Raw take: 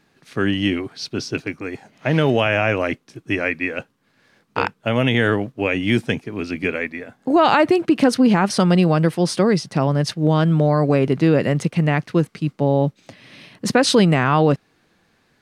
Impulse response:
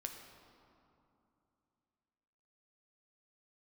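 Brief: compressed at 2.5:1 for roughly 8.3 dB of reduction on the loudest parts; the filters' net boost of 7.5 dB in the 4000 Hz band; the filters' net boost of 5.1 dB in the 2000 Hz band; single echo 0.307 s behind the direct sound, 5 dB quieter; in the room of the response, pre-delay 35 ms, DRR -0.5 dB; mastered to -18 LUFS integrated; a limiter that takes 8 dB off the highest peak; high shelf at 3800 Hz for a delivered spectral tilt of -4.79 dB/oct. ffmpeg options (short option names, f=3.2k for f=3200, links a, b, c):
-filter_complex "[0:a]equalizer=f=2k:t=o:g=3.5,highshelf=f=3.8k:g=6.5,equalizer=f=4k:t=o:g=4.5,acompressor=threshold=-22dB:ratio=2.5,alimiter=limit=-14dB:level=0:latency=1,aecho=1:1:307:0.562,asplit=2[a][b];[1:a]atrim=start_sample=2205,adelay=35[c];[b][c]afir=irnorm=-1:irlink=0,volume=2.5dB[d];[a][d]amix=inputs=2:normalize=0,volume=3.5dB"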